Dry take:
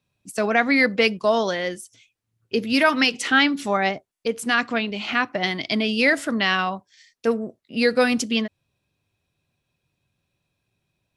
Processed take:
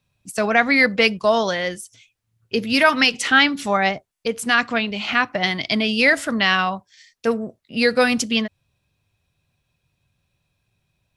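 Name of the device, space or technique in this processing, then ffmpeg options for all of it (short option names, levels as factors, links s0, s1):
low shelf boost with a cut just above: -af "lowshelf=f=91:g=7,equalizer=f=320:t=o:w=1.2:g=-5.5,volume=1.5"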